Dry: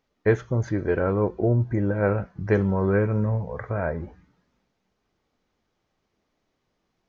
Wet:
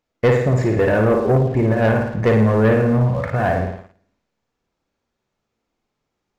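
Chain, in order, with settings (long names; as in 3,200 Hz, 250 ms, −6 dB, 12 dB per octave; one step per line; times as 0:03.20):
flutter between parallel walls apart 10.5 metres, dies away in 0.78 s
leveller curve on the samples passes 2
speed change +11%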